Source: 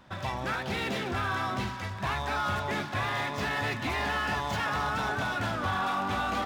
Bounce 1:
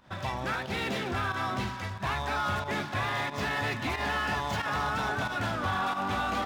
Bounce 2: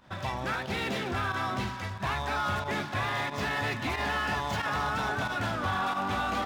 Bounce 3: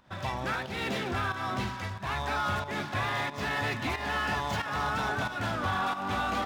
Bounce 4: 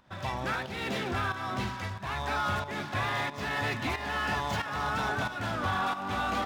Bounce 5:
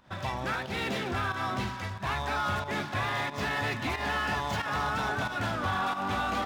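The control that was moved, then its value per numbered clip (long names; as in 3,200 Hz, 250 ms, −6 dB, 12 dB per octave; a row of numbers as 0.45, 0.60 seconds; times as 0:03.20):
fake sidechain pumping, release: 98, 60, 274, 428, 155 milliseconds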